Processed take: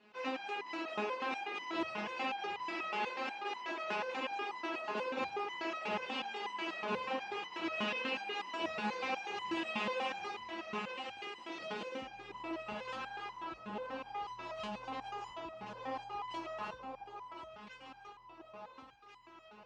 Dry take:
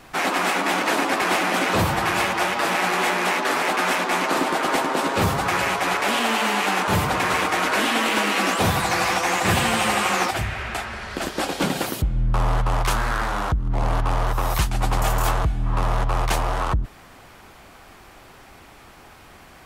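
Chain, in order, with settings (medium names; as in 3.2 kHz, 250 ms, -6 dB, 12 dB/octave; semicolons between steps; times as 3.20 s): cabinet simulation 150–5300 Hz, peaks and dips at 220 Hz +5 dB, 340 Hz +7 dB, 490 Hz +7 dB, 910 Hz +5 dB, 2.7 kHz +9 dB; echo whose repeats swap between lows and highs 696 ms, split 1.3 kHz, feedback 72%, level -4 dB; resonator arpeggio 8.2 Hz 210–1000 Hz; trim -6.5 dB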